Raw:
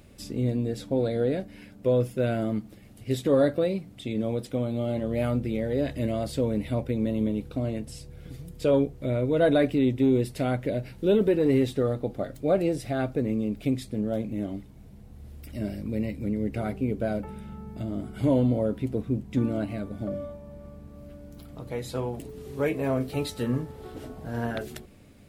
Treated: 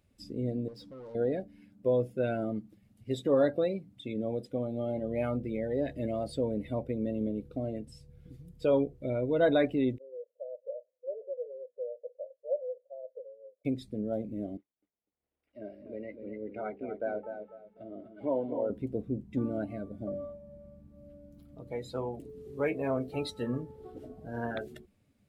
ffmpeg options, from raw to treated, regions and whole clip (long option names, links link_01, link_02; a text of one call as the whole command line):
ffmpeg -i in.wav -filter_complex "[0:a]asettb=1/sr,asplit=3[link_01][link_02][link_03];[link_01]atrim=end=0.684[link_04];[link_02]atrim=start=0.68:end=1.15,asetpts=PTS-STARTPTS,afade=type=in:duration=0.004:curve=qsin,afade=type=out:start_time=0.466:duration=0.004:curve=qsin,equalizer=frequency=5000:width=3:gain=9.5,acompressor=threshold=-32dB:ratio=2:attack=3.2:release=140:knee=1:detection=peak,asoftclip=type=hard:threshold=-39dB[link_05];[link_03]atrim=start=1.146[link_06];[link_04][link_05]acrossfade=duration=0.004:curve1=hsin:curve2=qsin[link_07];[link_07][link_06]acrossfade=duration=0.004:curve1=qsin:curve2=hsin,asettb=1/sr,asplit=3[link_08][link_09][link_10];[link_08]atrim=end=9.984[link_11];[link_09]atrim=start=9.98:end=13.65,asetpts=PTS-STARTPTS,afade=type=in:duration=0.004:curve=qsin,afade=type=out:start_time=3.666:duration=0.004:curve=qsin,asuperpass=centerf=550:order=4:qfactor=6.6,aecho=1:1:4.4:0.37,atrim=end_sample=161847[link_12];[link_10]atrim=start=13.646[link_13];[link_11][link_12]acrossfade=duration=0.004:curve1=hsin:curve2=qsin[link_14];[link_14][link_13]acrossfade=duration=0.004:curve1=qsin:curve2=hsin,asettb=1/sr,asplit=3[link_15][link_16][link_17];[link_15]atrim=end=14.574[link_18];[link_16]atrim=start=14.57:end=18.7,asetpts=PTS-STARTPTS,afade=type=in:duration=0.004:curve=qsin,afade=type=out:start_time=4.126:duration=0.004:curve=qsin,agate=range=-33dB:threshold=-36dB:ratio=3:release=100:detection=peak,acrossover=split=330 3400:gain=0.141 1 0.0891[link_19][link_20][link_21];[link_19][link_20][link_21]amix=inputs=3:normalize=0,aecho=1:1:248|496|744|992:0.447|0.161|0.0579|0.0208,atrim=end_sample=182133[link_22];[link_17]atrim=start=18.696[link_23];[link_18][link_22]acrossfade=duration=0.004:curve1=hsin:curve2=qsin[link_24];[link_24][link_23]acrossfade=duration=0.004:curve1=qsin:curve2=hsin,afftdn=noise_reduction=16:noise_floor=-38,lowshelf=frequency=210:gain=-9,volume=-2dB" out.wav